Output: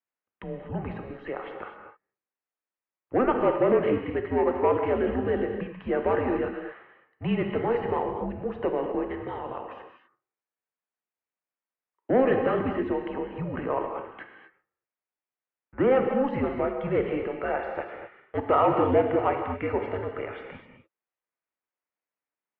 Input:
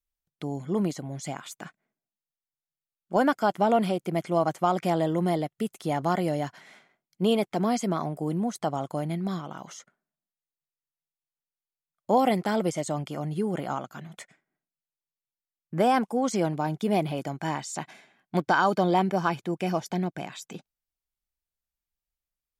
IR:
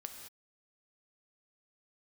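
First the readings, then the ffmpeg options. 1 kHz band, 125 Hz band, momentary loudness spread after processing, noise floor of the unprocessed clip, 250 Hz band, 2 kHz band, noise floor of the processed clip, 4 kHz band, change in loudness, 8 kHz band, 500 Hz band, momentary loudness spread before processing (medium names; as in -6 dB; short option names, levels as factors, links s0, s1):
-2.0 dB, -4.0 dB, 16 LU, under -85 dBFS, -1.5 dB, -1.5 dB, under -85 dBFS, no reading, +0.5 dB, under -35 dB, +3.5 dB, 15 LU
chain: -filter_complex "[0:a]asplit=2[s0][s1];[s1]highpass=f=720:p=1,volume=4.47,asoftclip=type=tanh:threshold=0.299[s2];[s0][s2]amix=inputs=2:normalize=0,lowpass=f=2000:p=1,volume=0.501[s3];[1:a]atrim=start_sample=2205,asetrate=37926,aresample=44100[s4];[s3][s4]afir=irnorm=-1:irlink=0,highpass=f=440:t=q:w=0.5412,highpass=f=440:t=q:w=1.307,lowpass=f=2800:t=q:w=0.5176,lowpass=f=2800:t=q:w=0.7071,lowpass=f=2800:t=q:w=1.932,afreqshift=-260,volume=1.41"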